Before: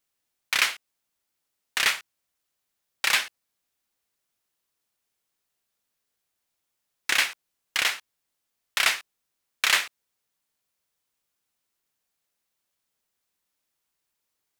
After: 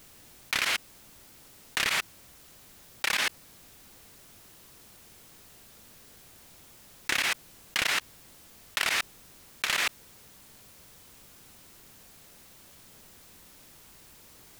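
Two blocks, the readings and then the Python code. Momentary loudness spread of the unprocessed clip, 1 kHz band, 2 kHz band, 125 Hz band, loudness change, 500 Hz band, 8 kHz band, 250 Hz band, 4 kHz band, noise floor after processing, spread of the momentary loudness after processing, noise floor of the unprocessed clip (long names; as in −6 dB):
12 LU, −2.0 dB, −3.5 dB, can't be measured, −4.0 dB, +0.5 dB, −3.5 dB, +5.0 dB, −3.5 dB, −54 dBFS, 8 LU, −81 dBFS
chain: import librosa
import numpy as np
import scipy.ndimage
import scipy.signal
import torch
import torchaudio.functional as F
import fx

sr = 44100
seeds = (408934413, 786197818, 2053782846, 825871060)

y = fx.level_steps(x, sr, step_db=22)
y = fx.low_shelf(y, sr, hz=390.0, db=12.0)
y = fx.env_flatten(y, sr, amount_pct=100)
y = y * 10.0 ** (-6.5 / 20.0)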